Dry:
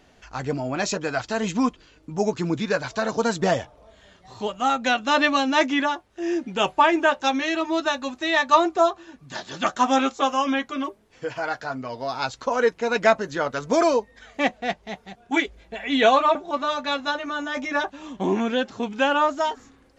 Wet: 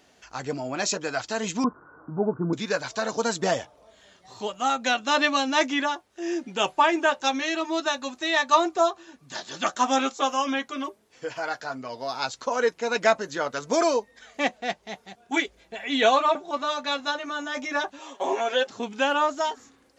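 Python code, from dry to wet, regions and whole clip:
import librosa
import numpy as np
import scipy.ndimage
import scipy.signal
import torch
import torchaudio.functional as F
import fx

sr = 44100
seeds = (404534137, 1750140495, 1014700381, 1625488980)

y = fx.chain(x, sr, fx.crossing_spikes(level_db=-19.0),
    fx.cheby_ripple(hz=1500.0, ripple_db=3),
    fx.peak_eq(hz=130.0, db=10.0, octaves=1.7), at=(1.64, 2.53))
y = fx.chain(y, sr, fx.highpass_res(hz=590.0, q=1.9),
    fx.comb(ms=7.3, depth=0.75), at=(17.99, 18.67))
y = fx.highpass(y, sr, hz=150.0, slope=6)
y = fx.bass_treble(y, sr, bass_db=-2, treble_db=6)
y = y * librosa.db_to_amplitude(-2.5)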